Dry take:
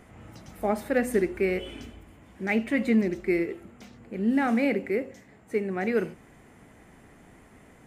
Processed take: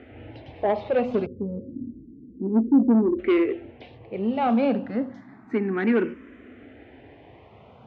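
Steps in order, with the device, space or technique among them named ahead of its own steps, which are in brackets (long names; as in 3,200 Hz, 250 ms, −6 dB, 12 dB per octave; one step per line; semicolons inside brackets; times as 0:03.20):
0:01.26–0:03.19: Butterworth low-pass 520 Hz 96 dB per octave
barber-pole phaser into a guitar amplifier (frequency shifter mixed with the dry sound +0.3 Hz; soft clipping −24 dBFS, distortion −13 dB; loudspeaker in its box 80–3,400 Hz, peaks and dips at 170 Hz −7 dB, 260 Hz +7 dB, 2,000 Hz −4 dB)
level +8.5 dB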